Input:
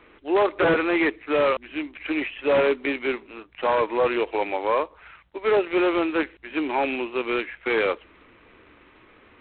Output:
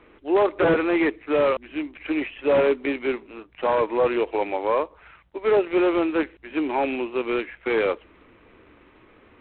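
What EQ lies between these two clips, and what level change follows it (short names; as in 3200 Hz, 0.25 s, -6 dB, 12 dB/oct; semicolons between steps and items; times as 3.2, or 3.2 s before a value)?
bell 1500 Hz -3 dB 1.9 oct; high shelf 3400 Hz -9 dB; +2.0 dB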